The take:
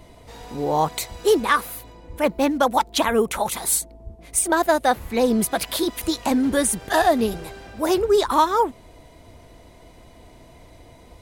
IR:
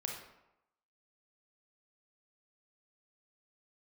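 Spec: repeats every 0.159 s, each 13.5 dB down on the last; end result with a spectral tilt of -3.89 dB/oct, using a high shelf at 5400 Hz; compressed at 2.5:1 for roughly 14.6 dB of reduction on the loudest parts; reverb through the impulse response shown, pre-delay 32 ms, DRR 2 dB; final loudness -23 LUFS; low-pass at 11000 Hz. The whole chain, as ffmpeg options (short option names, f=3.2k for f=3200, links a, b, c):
-filter_complex "[0:a]lowpass=11k,highshelf=f=5.4k:g=-5.5,acompressor=threshold=-37dB:ratio=2.5,aecho=1:1:159|318:0.211|0.0444,asplit=2[a][b];[1:a]atrim=start_sample=2205,adelay=32[c];[b][c]afir=irnorm=-1:irlink=0,volume=-2.5dB[d];[a][d]amix=inputs=2:normalize=0,volume=9.5dB"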